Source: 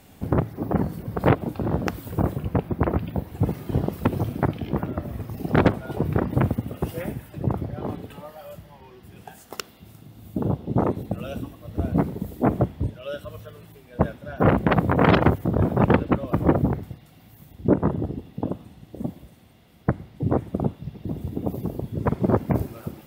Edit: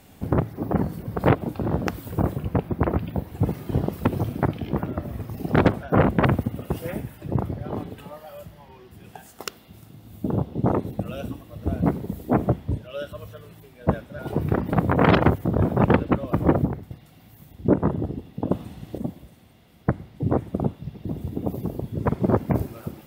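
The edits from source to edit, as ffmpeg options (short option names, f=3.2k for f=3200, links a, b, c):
-filter_complex "[0:a]asplit=9[a][b][c][d][e][f][g][h][i];[a]atrim=end=5.832[j];[b]atrim=start=14.308:end=14.732[k];[c]atrim=start=6.368:end=14.312[l];[d]atrim=start=5.828:end=6.372[m];[e]atrim=start=14.728:end=16.652[n];[f]atrim=start=16.648:end=16.912,asetpts=PTS-STARTPTS,volume=-4.5dB[o];[g]atrim=start=16.908:end=18.512[p];[h]atrim=start=18.508:end=18.982,asetpts=PTS-STARTPTS,volume=7dB[q];[i]atrim=start=18.978[r];[j][k]acrossfade=d=0.004:c1=hsin:c2=hsin[s];[s][l]acrossfade=d=0.004:c1=hsin:c2=hsin[t];[t][m]acrossfade=d=0.004:c1=hsin:c2=hsin[u];[u][n]acrossfade=d=0.004:c1=hsin:c2=hsin[v];[v][o]acrossfade=d=0.004:c1=hsin:c2=hsin[w];[w][p]acrossfade=d=0.004:c1=hsin:c2=hsin[x];[x][q]acrossfade=d=0.004:c1=hsin:c2=hsin[y];[y][r]acrossfade=d=0.004:c1=hsin:c2=hsin"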